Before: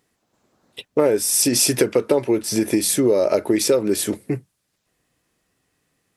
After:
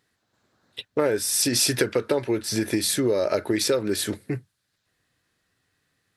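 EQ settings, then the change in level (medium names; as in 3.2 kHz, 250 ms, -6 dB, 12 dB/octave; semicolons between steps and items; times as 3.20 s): fifteen-band graphic EQ 100 Hz +8 dB, 1.6 kHz +9 dB, 4 kHz +8 dB; -6.0 dB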